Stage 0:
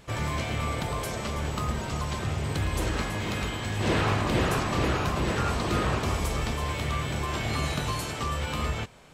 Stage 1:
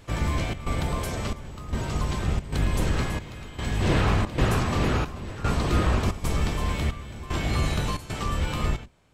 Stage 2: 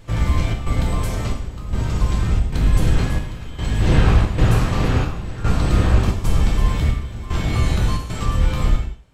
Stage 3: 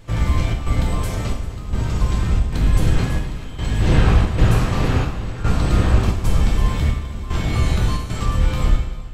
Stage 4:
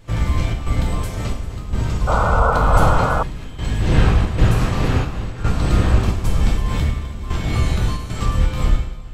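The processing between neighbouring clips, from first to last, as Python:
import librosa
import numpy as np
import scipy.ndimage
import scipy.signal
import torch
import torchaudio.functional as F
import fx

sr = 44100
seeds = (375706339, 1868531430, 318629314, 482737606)

y1 = fx.octave_divider(x, sr, octaves=1, level_db=4.0)
y1 = fx.step_gate(y1, sr, bpm=113, pattern='xxxx.xxxxx...x', floor_db=-12.0, edge_ms=4.5)
y2 = fx.low_shelf(y1, sr, hz=98.0, db=11.5)
y2 = fx.rev_gated(y2, sr, seeds[0], gate_ms=220, shape='falling', drr_db=2.0)
y3 = fx.echo_multitap(y2, sr, ms=(256, 397), db=(-16.0, -18.5))
y4 = fx.spec_paint(y3, sr, seeds[1], shape='noise', start_s=2.07, length_s=1.16, low_hz=430.0, high_hz=1500.0, level_db=-19.0)
y4 = fx.am_noise(y4, sr, seeds[2], hz=5.7, depth_pct=55)
y4 = y4 * librosa.db_to_amplitude(2.5)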